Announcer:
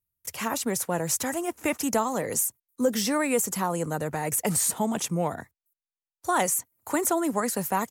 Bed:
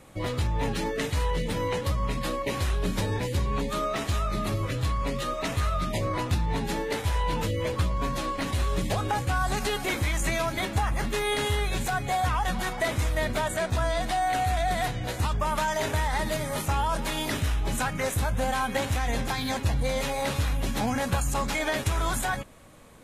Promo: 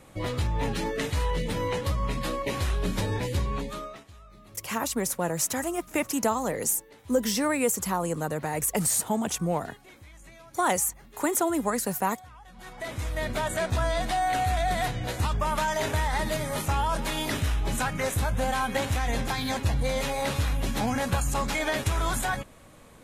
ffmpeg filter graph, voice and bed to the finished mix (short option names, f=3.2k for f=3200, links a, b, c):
-filter_complex "[0:a]adelay=4300,volume=-0.5dB[a];[1:a]volume=22.5dB,afade=t=out:st=3.39:d=0.65:silence=0.0749894,afade=t=in:st=12.52:d=1.04:silence=0.0707946[b];[a][b]amix=inputs=2:normalize=0"